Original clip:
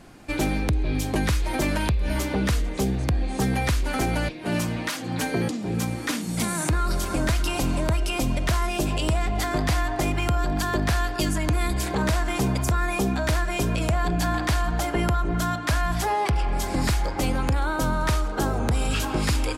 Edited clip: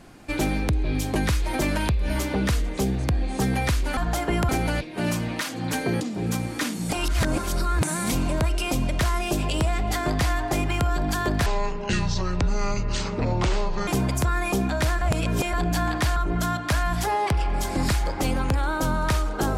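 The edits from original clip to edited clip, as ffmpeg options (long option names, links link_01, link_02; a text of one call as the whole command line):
ffmpeg -i in.wav -filter_complex "[0:a]asplit=10[link_01][link_02][link_03][link_04][link_05][link_06][link_07][link_08][link_09][link_10];[link_01]atrim=end=3.972[link_11];[link_02]atrim=start=14.628:end=15.152[link_12];[link_03]atrim=start=3.968:end=6.402[link_13];[link_04]atrim=start=6.398:end=7.602,asetpts=PTS-STARTPTS,areverse[link_14];[link_05]atrim=start=7.598:end=10.944[link_15];[link_06]atrim=start=10.94:end=12.34,asetpts=PTS-STARTPTS,asetrate=25578,aresample=44100,atrim=end_sample=106448,asetpts=PTS-STARTPTS[link_16];[link_07]atrim=start=12.336:end=13.482[link_17];[link_08]atrim=start=13.478:end=14.002,asetpts=PTS-STARTPTS,areverse[link_18];[link_09]atrim=start=13.998:end=14.632[link_19];[link_10]atrim=start=15.148[link_20];[link_11][link_12]acrossfade=duration=0.004:curve1=hsin:curve2=hsin[link_21];[link_21][link_13]acrossfade=duration=0.004:curve1=hsin:curve2=hsin[link_22];[link_22][link_14]acrossfade=duration=0.004:curve1=hsin:curve2=hsin[link_23];[link_23][link_15]acrossfade=duration=0.004:curve1=hsin:curve2=hsin[link_24];[link_24][link_16]acrossfade=duration=0.004:curve1=hsin:curve2=hsin[link_25];[link_25][link_17]acrossfade=duration=0.004:curve1=hsin:curve2=hsin[link_26];[link_26][link_18]acrossfade=duration=0.004:curve1=hsin:curve2=hsin[link_27];[link_27][link_19]acrossfade=duration=0.004:curve1=hsin:curve2=hsin[link_28];[link_28][link_20]acrossfade=duration=0.004:curve1=hsin:curve2=hsin" out.wav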